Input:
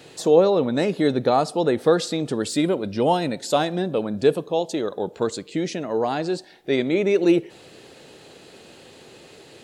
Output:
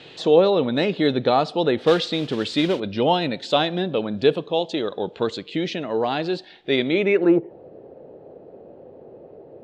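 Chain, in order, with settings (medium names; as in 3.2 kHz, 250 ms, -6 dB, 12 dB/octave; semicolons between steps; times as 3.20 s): 1.83–2.80 s: modulation noise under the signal 16 dB; low-pass sweep 3.4 kHz -> 590 Hz, 7.00–7.53 s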